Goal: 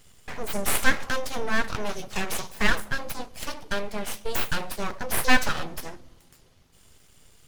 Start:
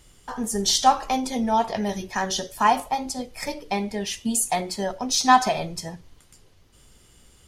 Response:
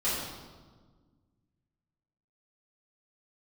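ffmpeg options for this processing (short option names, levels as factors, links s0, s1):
-filter_complex "[0:a]aeval=exprs='abs(val(0))':c=same,equalizer=f=290:w=3.1:g=-3.5,asplit=2[s0][s1];[s1]lowpass=1200[s2];[1:a]atrim=start_sample=2205,adelay=118[s3];[s2][s3]afir=irnorm=-1:irlink=0,volume=0.0266[s4];[s0][s4]amix=inputs=2:normalize=0"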